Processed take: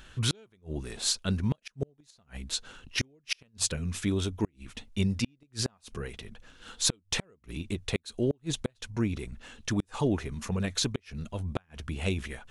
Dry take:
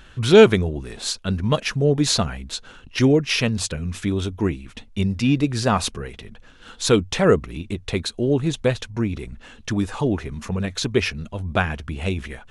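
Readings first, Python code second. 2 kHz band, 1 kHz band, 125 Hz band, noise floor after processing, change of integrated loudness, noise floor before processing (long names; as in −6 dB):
−12.0 dB, −16.0 dB, −9.5 dB, −70 dBFS, −11.0 dB, −47 dBFS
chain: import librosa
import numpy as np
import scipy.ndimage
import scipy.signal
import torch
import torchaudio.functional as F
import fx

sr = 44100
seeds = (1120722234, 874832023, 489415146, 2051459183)

y = fx.gate_flip(x, sr, shuts_db=-11.0, range_db=-39)
y = fx.high_shelf(y, sr, hz=4800.0, db=7.0)
y = y * 10.0 ** (-5.5 / 20.0)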